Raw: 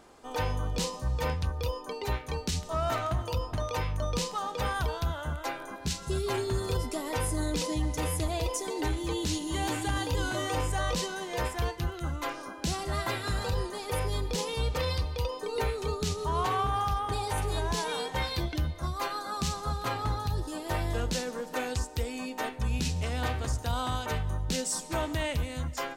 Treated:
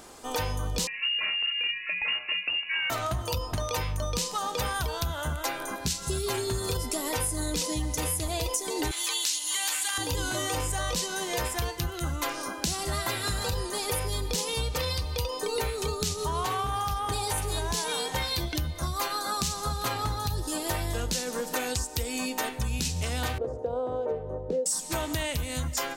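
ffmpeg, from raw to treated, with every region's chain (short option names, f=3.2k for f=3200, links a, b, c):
-filter_complex "[0:a]asettb=1/sr,asplit=3[a][b][c];[a]atrim=end=0.874[d];[b]atrim=start=0.87:end=2.9,asetpts=PTS-STARTPTS,afade=t=in:d=0.004:c=qsin,afade=t=out:st=2.026:d=0.004:c=qsin,volume=26dB,asoftclip=hard,volume=-26dB,lowpass=f=2.5k:t=q:w=0.5098,lowpass=f=2.5k:t=q:w=0.6013,lowpass=f=2.5k:t=q:w=0.9,lowpass=f=2.5k:t=q:w=2.563,afreqshift=-2900[e];[c]atrim=start=2.896[f];[d][e]acrossfade=d=0.004:c1=hsin:c2=qsin[g];[g][f]acrossfade=d=0.004:c1=qsin:c2=hsin,asettb=1/sr,asplit=3[h][i][j];[h]atrim=end=8.914[k];[i]atrim=start=8.91:end=9.98,asetpts=PTS-STARTPTS,afade=t=in:d=0.004:c=qsin,afade=t=out:st=1.066:d=0.004:c=qsin,highpass=1.4k,acontrast=47[l];[j]atrim=start=9.976[m];[k][l]acrossfade=d=0.004:c1=hsin:c2=qsin[n];[n][m]acrossfade=d=0.004:c1=qsin:c2=hsin,asettb=1/sr,asplit=3[o][p][q];[o]atrim=end=23.384[r];[p]atrim=start=23.38:end=24.66,asetpts=PTS-STARTPTS,afade=t=in:d=0.004:c=qsin,afade=t=out:st=1.276:d=0.004:c=qsin,lowpass=f=490:t=q:w=5.9,aemphasis=mode=production:type=riaa[s];[q]atrim=start=24.656[t];[r][s]acrossfade=d=0.004:c1=hsin:c2=qsin[u];[u][t]acrossfade=d=0.004:c1=qsin:c2=hsin,highshelf=f=4.4k:g=12,acompressor=threshold=-32dB:ratio=6,volume=5.5dB"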